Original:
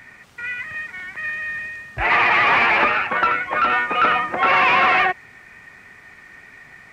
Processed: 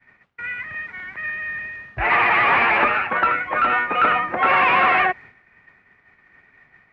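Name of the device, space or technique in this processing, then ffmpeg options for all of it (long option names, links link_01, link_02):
hearing-loss simulation: -af "lowpass=2700,agate=range=-33dB:threshold=-37dB:ratio=3:detection=peak"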